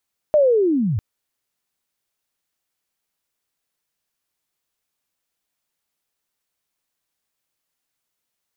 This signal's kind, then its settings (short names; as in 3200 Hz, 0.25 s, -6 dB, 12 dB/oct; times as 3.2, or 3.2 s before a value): chirp linear 620 Hz -> 88 Hz -10.5 dBFS -> -18.5 dBFS 0.65 s